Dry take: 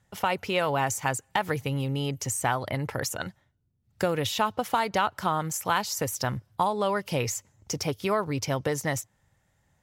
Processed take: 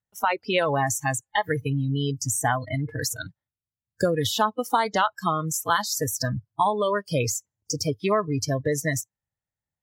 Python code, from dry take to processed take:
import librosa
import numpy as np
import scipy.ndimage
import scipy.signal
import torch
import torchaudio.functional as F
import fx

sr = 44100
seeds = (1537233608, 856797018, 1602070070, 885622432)

y = fx.noise_reduce_blind(x, sr, reduce_db=28)
y = y * librosa.db_to_amplitude(4.0)